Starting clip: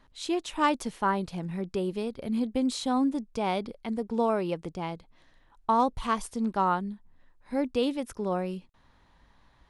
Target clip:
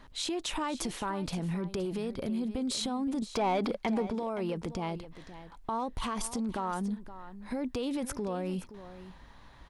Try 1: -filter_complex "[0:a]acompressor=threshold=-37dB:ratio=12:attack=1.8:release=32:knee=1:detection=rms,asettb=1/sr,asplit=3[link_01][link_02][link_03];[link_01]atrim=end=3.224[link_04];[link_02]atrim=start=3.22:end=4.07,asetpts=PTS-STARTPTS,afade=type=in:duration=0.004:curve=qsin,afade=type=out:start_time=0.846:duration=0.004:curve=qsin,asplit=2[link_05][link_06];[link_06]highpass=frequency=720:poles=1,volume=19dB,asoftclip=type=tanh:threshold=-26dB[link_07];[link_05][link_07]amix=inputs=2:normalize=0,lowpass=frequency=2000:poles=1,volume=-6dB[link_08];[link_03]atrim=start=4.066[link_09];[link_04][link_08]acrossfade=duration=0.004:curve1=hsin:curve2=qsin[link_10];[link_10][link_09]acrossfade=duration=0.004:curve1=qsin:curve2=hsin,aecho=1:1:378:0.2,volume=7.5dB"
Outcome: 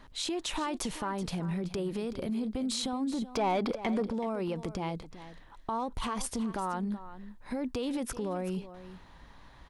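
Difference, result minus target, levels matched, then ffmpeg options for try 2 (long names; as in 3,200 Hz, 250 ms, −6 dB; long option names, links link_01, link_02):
echo 143 ms early
-filter_complex "[0:a]acompressor=threshold=-37dB:ratio=12:attack=1.8:release=32:knee=1:detection=rms,asettb=1/sr,asplit=3[link_01][link_02][link_03];[link_01]atrim=end=3.224[link_04];[link_02]atrim=start=3.22:end=4.07,asetpts=PTS-STARTPTS,afade=type=in:duration=0.004:curve=qsin,afade=type=out:start_time=0.846:duration=0.004:curve=qsin,asplit=2[link_05][link_06];[link_06]highpass=frequency=720:poles=1,volume=19dB,asoftclip=type=tanh:threshold=-26dB[link_07];[link_05][link_07]amix=inputs=2:normalize=0,lowpass=frequency=2000:poles=1,volume=-6dB[link_08];[link_03]atrim=start=4.066[link_09];[link_04][link_08]acrossfade=duration=0.004:curve1=hsin:curve2=qsin[link_10];[link_10][link_09]acrossfade=duration=0.004:curve1=qsin:curve2=hsin,aecho=1:1:521:0.2,volume=7.5dB"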